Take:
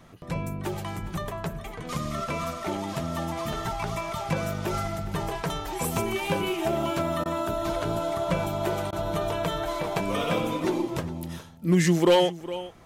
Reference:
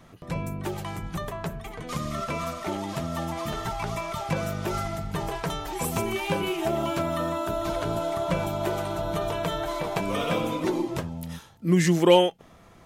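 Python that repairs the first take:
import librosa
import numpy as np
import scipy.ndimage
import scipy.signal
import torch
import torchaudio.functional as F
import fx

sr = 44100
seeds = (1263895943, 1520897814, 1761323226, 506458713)

y = fx.fix_declip(x, sr, threshold_db=-13.0)
y = fx.fix_interpolate(y, sr, at_s=(7.24, 8.91), length_ms=15.0)
y = fx.fix_echo_inverse(y, sr, delay_ms=411, level_db=-16.5)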